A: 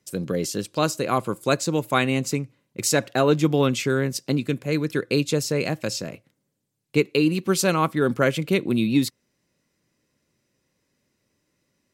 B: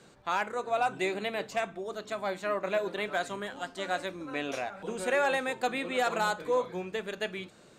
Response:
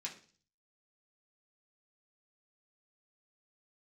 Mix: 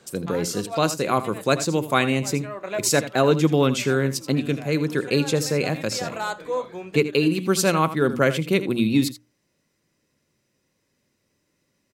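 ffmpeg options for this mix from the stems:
-filter_complex "[0:a]volume=1dB,asplit=3[a][b][c];[b]volume=-13.5dB[d];[1:a]volume=1.5dB[e];[c]apad=whole_len=343328[f];[e][f]sidechaincompress=threshold=-31dB:ratio=3:attack=6:release=303[g];[d]aecho=0:1:81:1[h];[a][g][h]amix=inputs=3:normalize=0,bandreject=f=60:t=h:w=6,bandreject=f=120:t=h:w=6,bandreject=f=180:t=h:w=6,bandreject=f=240:t=h:w=6,bandreject=f=300:t=h:w=6"

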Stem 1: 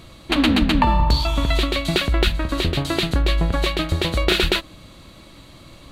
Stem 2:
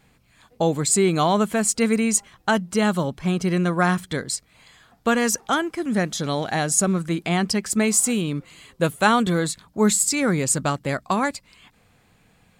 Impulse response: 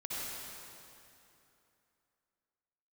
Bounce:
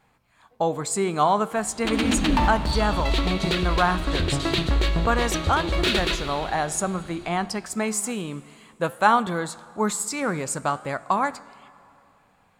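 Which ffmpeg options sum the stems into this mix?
-filter_complex "[0:a]lowpass=7.3k,asoftclip=type=hard:threshold=-14.5dB,adelay=1550,volume=-3dB,asplit=2[a][b];[b]volume=-10.5dB[c];[1:a]equalizer=f=960:t=o:w=1.6:g=11,flanger=delay=8.1:depth=8.1:regen=88:speed=0.55:shape=triangular,volume=-4dB,asplit=3[d][e][f];[e]volume=-23dB[g];[f]apad=whole_len=329097[h];[a][h]sidechaincompress=threshold=-25dB:ratio=8:attack=5.2:release=314[i];[2:a]atrim=start_sample=2205[j];[c][g]amix=inputs=2:normalize=0[k];[k][j]afir=irnorm=-1:irlink=0[l];[i][d][l]amix=inputs=3:normalize=0"

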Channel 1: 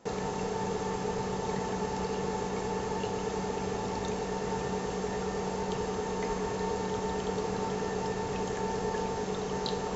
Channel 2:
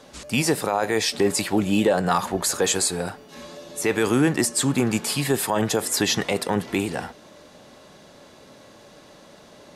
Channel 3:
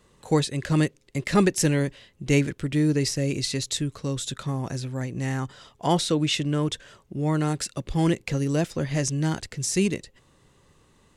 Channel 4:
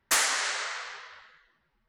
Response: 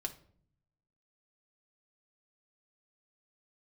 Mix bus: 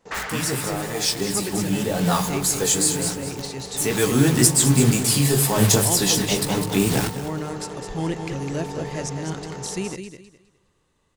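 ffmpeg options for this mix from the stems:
-filter_complex "[0:a]volume=-8.5dB,asplit=2[a][b];[b]volume=-23.5dB[c];[1:a]bass=f=250:g=12,treble=f=4k:g=11,flanger=delay=15:depth=6.4:speed=2,acrusher=bits=4:mix=0:aa=0.000001,volume=-4dB,asplit=3[d][e][f];[e]volume=-4dB[g];[f]volume=-10dB[h];[2:a]volume=-10dB,asplit=3[i][j][k];[j]volume=-7dB[l];[3:a]lowpass=2.3k,volume=-1.5dB[m];[k]apad=whole_len=430046[n];[d][n]sidechaincompress=threshold=-44dB:ratio=8:attack=16:release=256[o];[4:a]atrim=start_sample=2205[p];[g][p]afir=irnorm=-1:irlink=0[q];[c][h][l]amix=inputs=3:normalize=0,aecho=0:1:207|414|621|828:1|0.26|0.0676|0.0176[r];[a][o][i][m][q][r]amix=inputs=6:normalize=0,dynaudnorm=f=500:g=11:m=11.5dB,equalizer=f=220:t=o:w=0.35:g=-4,bandreject=f=50:t=h:w=6,bandreject=f=100:t=h:w=6,bandreject=f=150:t=h:w=6"

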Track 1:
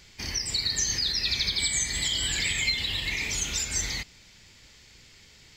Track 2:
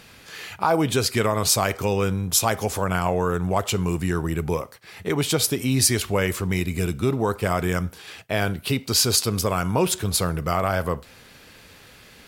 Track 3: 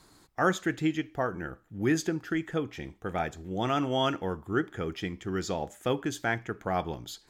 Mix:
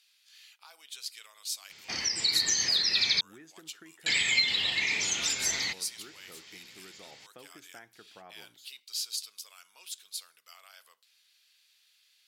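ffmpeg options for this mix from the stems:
-filter_complex "[0:a]lowpass=6.6k,adelay=1700,volume=2dB,asplit=3[a][b][c];[a]atrim=end=3.21,asetpts=PTS-STARTPTS,afade=t=out:st=3.206:d=0.004:c=hsin[d];[b]atrim=start=3.21:end=4.06,asetpts=PTS-STARTPTS,volume=0[e];[c]atrim=start=4.06,asetpts=PTS-STARTPTS,afade=t=in:d=0.004:c=hsin[f];[d][e][f]concat=n=3:v=0:a=1[g];[1:a]bandpass=f=3.7k:t=q:w=1.5:csg=0,aemphasis=mode=production:type=riaa,volume=-19dB[h];[2:a]acompressor=threshold=-30dB:ratio=6,adelay=1500,volume=-15dB[i];[g][h][i]amix=inputs=3:normalize=0,highpass=150,lowshelf=f=400:g=-7.5"

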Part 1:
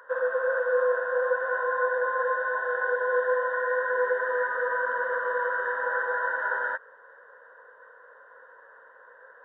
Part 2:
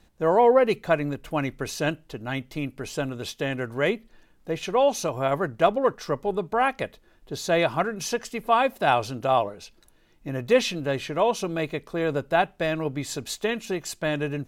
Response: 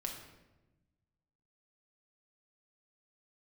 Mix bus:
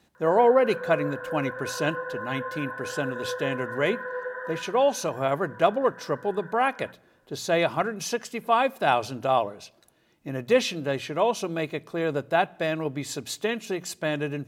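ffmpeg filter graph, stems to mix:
-filter_complex "[0:a]adelay=150,volume=-7.5dB,afade=t=out:st=4.47:d=0.33:silence=0.281838[a];[1:a]highpass=100,bandreject=f=60:t=h:w=6,bandreject=f=120:t=h:w=6,bandreject=f=180:t=h:w=6,volume=-1.5dB,asplit=2[b][c];[c]volume=-21.5dB[d];[2:a]atrim=start_sample=2205[e];[d][e]afir=irnorm=-1:irlink=0[f];[a][b][f]amix=inputs=3:normalize=0"

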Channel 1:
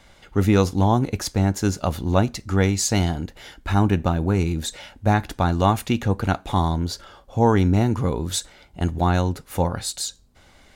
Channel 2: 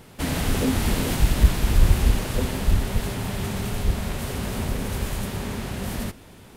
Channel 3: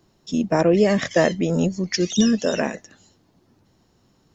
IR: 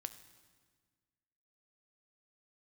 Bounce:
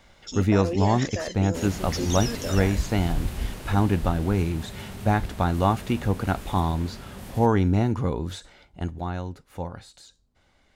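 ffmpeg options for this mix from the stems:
-filter_complex "[0:a]acrossover=split=2800[a][b];[b]acompressor=threshold=-35dB:ratio=4:attack=1:release=60[c];[a][c]amix=inputs=2:normalize=0,highshelf=f=9.2k:g=-10,volume=-3dB,afade=t=out:st=8.56:d=0.48:silence=0.398107[d];[1:a]adelay=1350,volume=-10.5dB[e];[2:a]bass=f=250:g=-14,treble=f=4k:g=7,alimiter=limit=-16dB:level=0:latency=1:release=25,volume=-6dB[f];[d][e][f]amix=inputs=3:normalize=0"

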